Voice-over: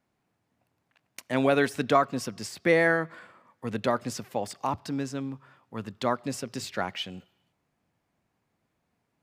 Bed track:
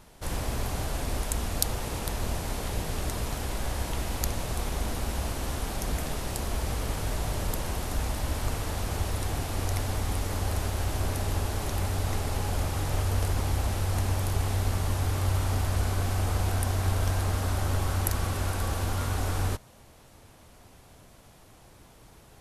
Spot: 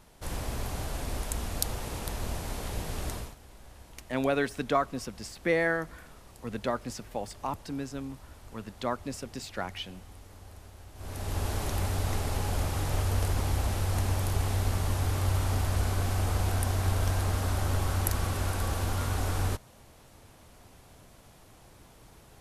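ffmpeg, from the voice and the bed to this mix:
-filter_complex "[0:a]adelay=2800,volume=-4.5dB[a];[1:a]volume=15.5dB,afade=t=out:st=3.12:d=0.23:silence=0.149624,afade=t=in:st=10.95:d=0.54:silence=0.112202[b];[a][b]amix=inputs=2:normalize=0"

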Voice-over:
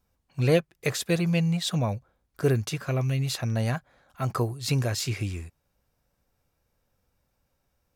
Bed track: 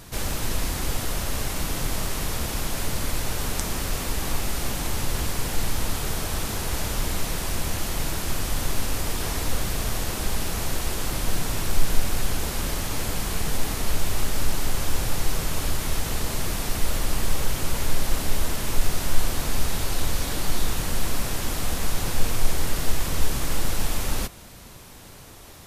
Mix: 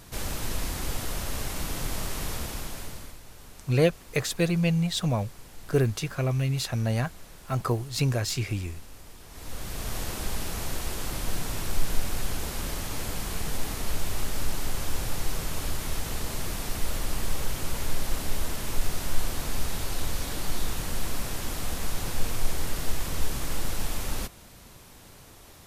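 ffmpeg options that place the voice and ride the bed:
-filter_complex "[0:a]adelay=3300,volume=0dB[a];[1:a]volume=11dB,afade=t=out:st=2.3:d=0.88:silence=0.158489,afade=t=in:st=9.29:d=0.7:silence=0.16788[b];[a][b]amix=inputs=2:normalize=0"

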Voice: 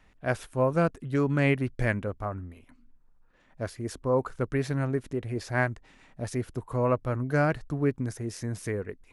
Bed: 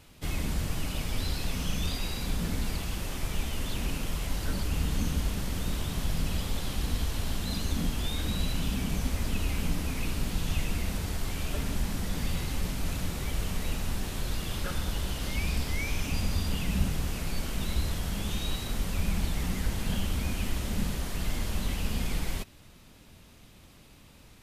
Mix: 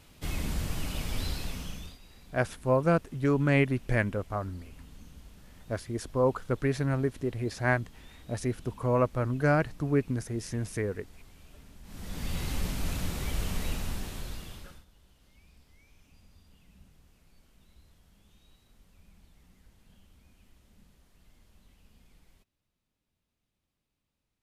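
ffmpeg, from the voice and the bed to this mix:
-filter_complex "[0:a]adelay=2100,volume=0dB[a];[1:a]volume=19.5dB,afade=t=out:st=1.25:d=0.73:silence=0.1,afade=t=in:st=11.83:d=0.65:silence=0.0891251,afade=t=out:st=13.63:d=1.22:silence=0.0334965[b];[a][b]amix=inputs=2:normalize=0"

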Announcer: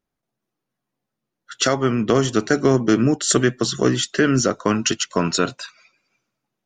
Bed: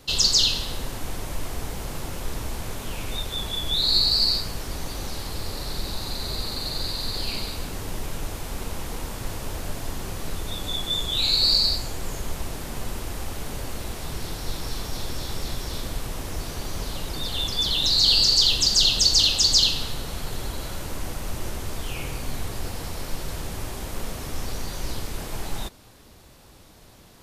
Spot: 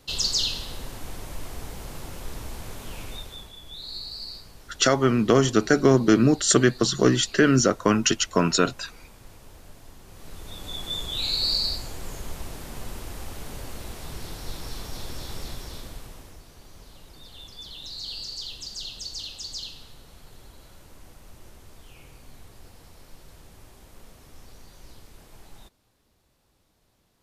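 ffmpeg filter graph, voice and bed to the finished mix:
-filter_complex "[0:a]adelay=3200,volume=-1dB[a];[1:a]volume=6dB,afade=t=out:st=3.01:d=0.52:silence=0.281838,afade=t=in:st=10.06:d=0.85:silence=0.266073,afade=t=out:st=15.4:d=1.02:silence=0.237137[b];[a][b]amix=inputs=2:normalize=0"

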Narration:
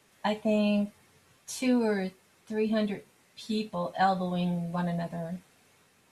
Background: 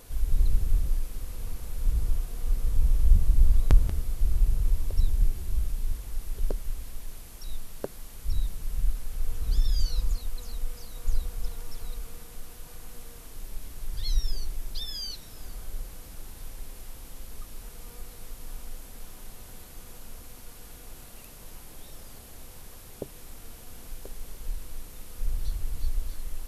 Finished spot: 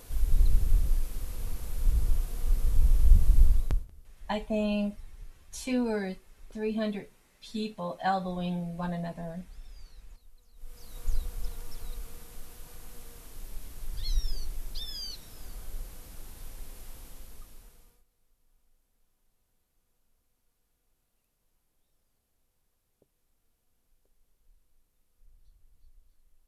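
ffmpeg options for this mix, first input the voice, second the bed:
-filter_complex "[0:a]adelay=4050,volume=-3dB[a];[1:a]volume=20.5dB,afade=t=out:st=3.4:d=0.46:silence=0.0668344,afade=t=in:st=10.55:d=0.44:silence=0.0944061,afade=t=out:st=16.98:d=1.06:silence=0.0421697[b];[a][b]amix=inputs=2:normalize=0"

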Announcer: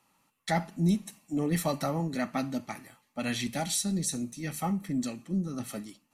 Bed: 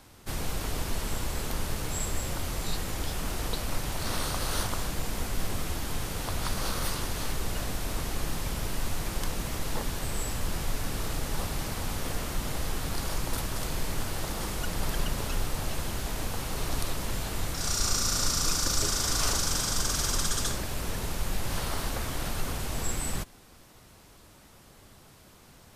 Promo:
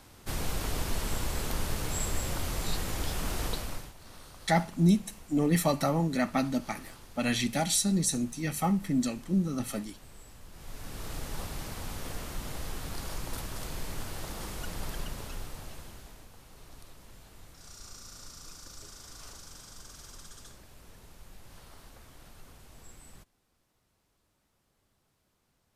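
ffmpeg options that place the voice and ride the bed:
-filter_complex "[0:a]adelay=4000,volume=3dB[a];[1:a]volume=13dB,afade=t=out:st=3.45:d=0.48:silence=0.112202,afade=t=in:st=10.52:d=0.65:silence=0.211349,afade=t=out:st=14.7:d=1.57:silence=0.188365[b];[a][b]amix=inputs=2:normalize=0"

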